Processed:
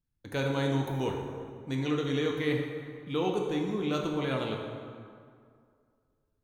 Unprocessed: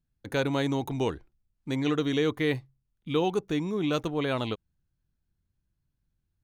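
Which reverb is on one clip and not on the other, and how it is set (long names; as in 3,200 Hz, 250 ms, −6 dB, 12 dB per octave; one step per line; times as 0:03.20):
dense smooth reverb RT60 2.2 s, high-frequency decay 0.6×, DRR 0.5 dB
level −5 dB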